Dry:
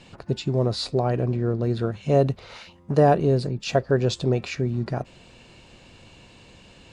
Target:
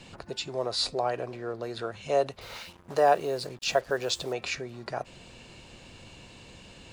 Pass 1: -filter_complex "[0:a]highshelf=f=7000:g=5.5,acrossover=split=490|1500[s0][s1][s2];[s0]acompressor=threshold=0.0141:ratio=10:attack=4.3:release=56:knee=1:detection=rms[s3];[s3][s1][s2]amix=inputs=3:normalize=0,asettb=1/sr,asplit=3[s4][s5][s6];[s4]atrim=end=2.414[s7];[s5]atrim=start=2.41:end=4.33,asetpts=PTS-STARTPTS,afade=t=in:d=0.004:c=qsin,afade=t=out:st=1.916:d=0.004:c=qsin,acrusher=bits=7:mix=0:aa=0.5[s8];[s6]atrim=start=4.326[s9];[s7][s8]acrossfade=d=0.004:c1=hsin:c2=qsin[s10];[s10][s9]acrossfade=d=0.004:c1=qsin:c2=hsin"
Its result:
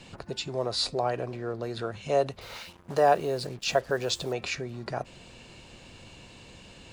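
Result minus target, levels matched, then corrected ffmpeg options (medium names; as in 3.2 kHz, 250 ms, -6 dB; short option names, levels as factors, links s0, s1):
compression: peak gain reduction -6 dB
-filter_complex "[0:a]highshelf=f=7000:g=5.5,acrossover=split=490|1500[s0][s1][s2];[s0]acompressor=threshold=0.00668:ratio=10:attack=4.3:release=56:knee=1:detection=rms[s3];[s3][s1][s2]amix=inputs=3:normalize=0,asettb=1/sr,asplit=3[s4][s5][s6];[s4]atrim=end=2.414[s7];[s5]atrim=start=2.41:end=4.33,asetpts=PTS-STARTPTS,afade=t=in:d=0.004:c=qsin,afade=t=out:st=1.916:d=0.004:c=qsin,acrusher=bits=7:mix=0:aa=0.5[s8];[s6]atrim=start=4.326[s9];[s7][s8]acrossfade=d=0.004:c1=hsin:c2=qsin[s10];[s10][s9]acrossfade=d=0.004:c1=qsin:c2=hsin"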